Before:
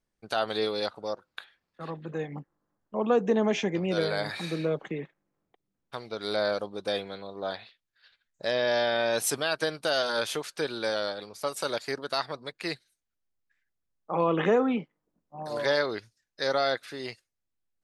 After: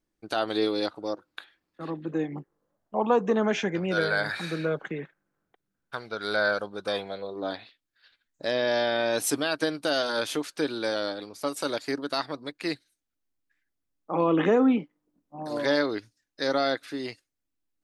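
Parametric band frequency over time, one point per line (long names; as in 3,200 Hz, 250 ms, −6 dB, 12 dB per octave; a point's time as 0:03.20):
parametric band +12 dB 0.35 octaves
0:02.27 310 Hz
0:03.48 1,500 Hz
0:06.81 1,500 Hz
0:07.43 290 Hz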